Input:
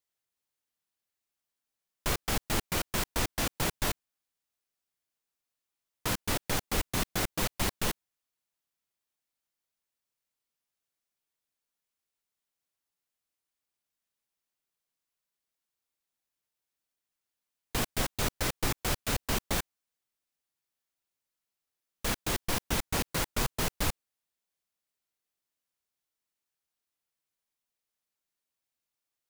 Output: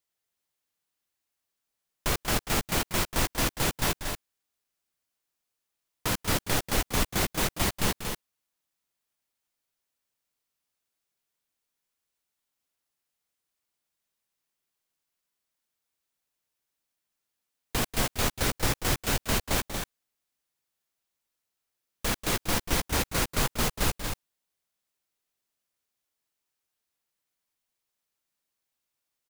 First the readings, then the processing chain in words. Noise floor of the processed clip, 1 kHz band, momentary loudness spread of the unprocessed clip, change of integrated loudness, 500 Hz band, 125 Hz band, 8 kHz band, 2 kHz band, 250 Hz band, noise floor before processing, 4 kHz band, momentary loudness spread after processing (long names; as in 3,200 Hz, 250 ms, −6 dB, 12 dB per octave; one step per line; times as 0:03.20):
−84 dBFS, +3.5 dB, 3 LU, +3.5 dB, +3.5 dB, +4.0 dB, +4.0 dB, +4.0 dB, +3.5 dB, below −85 dBFS, +3.5 dB, 8 LU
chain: loudspeakers that aren't time-aligned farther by 65 metres −11 dB, 80 metres −6 dB
level +2.5 dB